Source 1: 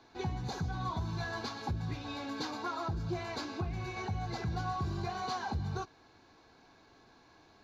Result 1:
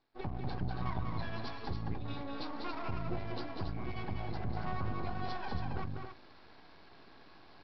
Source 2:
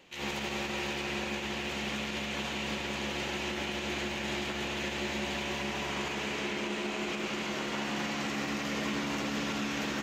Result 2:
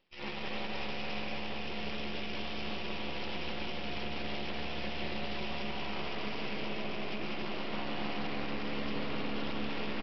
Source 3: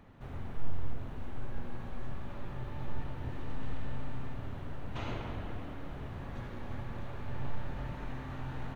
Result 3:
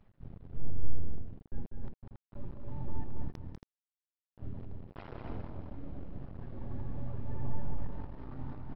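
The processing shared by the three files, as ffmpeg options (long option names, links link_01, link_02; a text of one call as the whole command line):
ffmpeg -i in.wav -af "afftdn=noise_reduction=17:noise_floor=-40,aresample=11025,aeval=exprs='max(val(0),0)':channel_layout=same,aresample=44100,areverse,acompressor=mode=upward:threshold=-40dB:ratio=2.5,areverse,adynamicequalizer=threshold=0.00126:dfrequency=1700:dqfactor=1.8:tfrequency=1700:tqfactor=1.8:attack=5:release=100:ratio=0.375:range=2.5:mode=cutabove:tftype=bell,aecho=1:1:195.3|277:0.562|0.447,volume=1dB" out.wav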